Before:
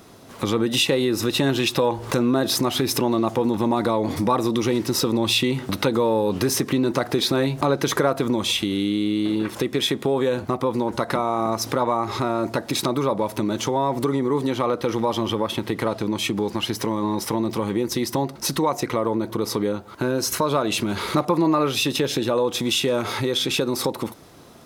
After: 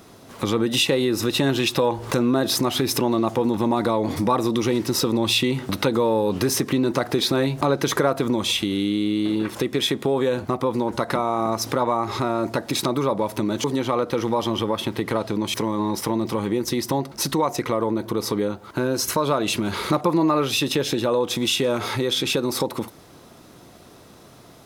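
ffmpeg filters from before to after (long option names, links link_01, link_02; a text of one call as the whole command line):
ffmpeg -i in.wav -filter_complex "[0:a]asplit=3[link_01][link_02][link_03];[link_01]atrim=end=13.642[link_04];[link_02]atrim=start=14.348:end=16.252[link_05];[link_03]atrim=start=16.778[link_06];[link_04][link_05]acrossfade=duration=0.004:curve1=hsin:curve2=hsin[link_07];[link_07][link_06]acrossfade=duration=0.004:curve1=hsin:curve2=hsin" out.wav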